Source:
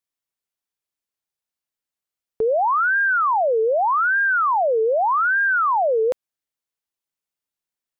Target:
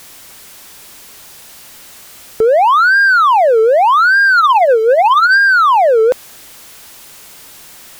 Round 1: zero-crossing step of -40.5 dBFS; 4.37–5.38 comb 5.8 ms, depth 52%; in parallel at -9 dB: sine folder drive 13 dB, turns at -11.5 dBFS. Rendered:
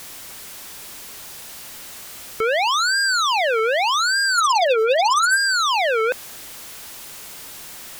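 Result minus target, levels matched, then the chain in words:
sine folder: distortion +22 dB
zero-crossing step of -40.5 dBFS; 4.37–5.38 comb 5.8 ms, depth 52%; in parallel at -9 dB: sine folder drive 13 dB, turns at -2 dBFS

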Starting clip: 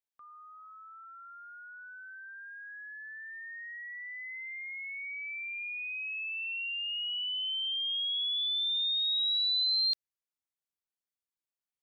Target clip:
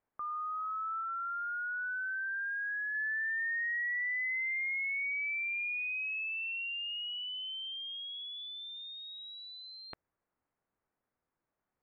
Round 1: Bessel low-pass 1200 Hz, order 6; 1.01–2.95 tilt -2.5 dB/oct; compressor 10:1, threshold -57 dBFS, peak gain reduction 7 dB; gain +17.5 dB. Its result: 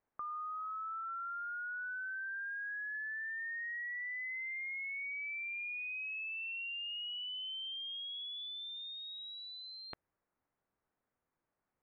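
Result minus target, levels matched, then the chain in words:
compressor: peak gain reduction +7 dB
Bessel low-pass 1200 Hz, order 6; 1.01–2.95 tilt -2.5 dB/oct; gain +17.5 dB

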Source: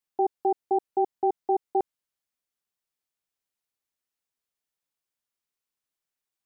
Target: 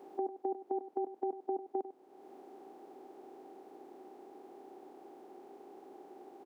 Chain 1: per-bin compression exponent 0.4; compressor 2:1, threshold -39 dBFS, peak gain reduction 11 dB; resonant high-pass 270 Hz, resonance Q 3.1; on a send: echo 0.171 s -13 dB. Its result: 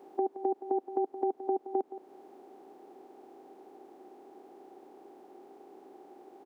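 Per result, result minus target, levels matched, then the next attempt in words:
echo 73 ms late; compressor: peak gain reduction -5.5 dB
per-bin compression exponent 0.4; compressor 2:1, threshold -39 dBFS, peak gain reduction 11 dB; resonant high-pass 270 Hz, resonance Q 3.1; on a send: echo 98 ms -13 dB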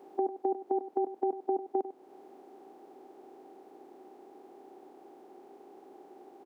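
compressor: peak gain reduction -5.5 dB
per-bin compression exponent 0.4; compressor 2:1, threshold -50 dBFS, peak gain reduction 16.5 dB; resonant high-pass 270 Hz, resonance Q 3.1; on a send: echo 98 ms -13 dB

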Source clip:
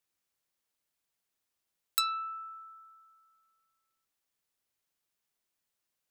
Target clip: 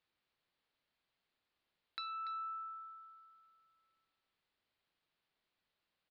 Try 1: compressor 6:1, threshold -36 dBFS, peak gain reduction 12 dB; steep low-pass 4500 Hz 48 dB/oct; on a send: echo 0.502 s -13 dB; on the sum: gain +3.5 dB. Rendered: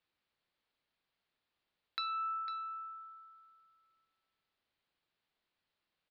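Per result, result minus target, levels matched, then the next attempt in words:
echo 0.214 s late; compressor: peak gain reduction -6 dB
compressor 6:1, threshold -36 dBFS, peak gain reduction 12 dB; steep low-pass 4500 Hz 48 dB/oct; on a send: echo 0.288 s -13 dB; on the sum: gain +3.5 dB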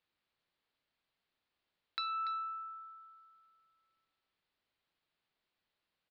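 compressor: peak gain reduction -6 dB
compressor 6:1, threshold -43 dBFS, peak gain reduction 18 dB; steep low-pass 4500 Hz 48 dB/oct; on a send: echo 0.288 s -13 dB; on the sum: gain +3.5 dB

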